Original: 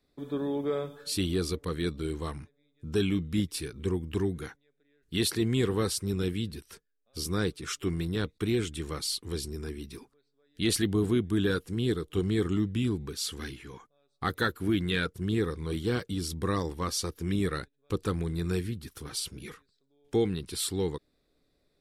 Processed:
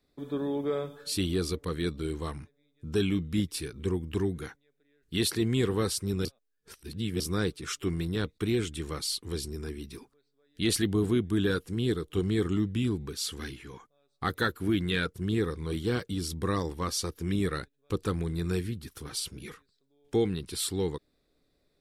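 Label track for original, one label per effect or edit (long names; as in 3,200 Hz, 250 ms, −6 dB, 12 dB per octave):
6.250000	7.200000	reverse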